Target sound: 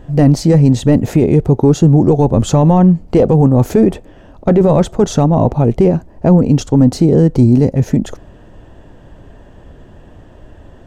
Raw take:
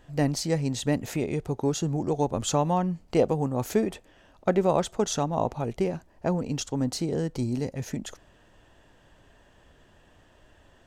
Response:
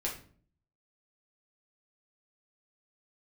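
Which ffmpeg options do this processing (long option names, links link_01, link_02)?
-af "apsyclip=22dB,tiltshelf=frequency=920:gain=8,volume=-9dB"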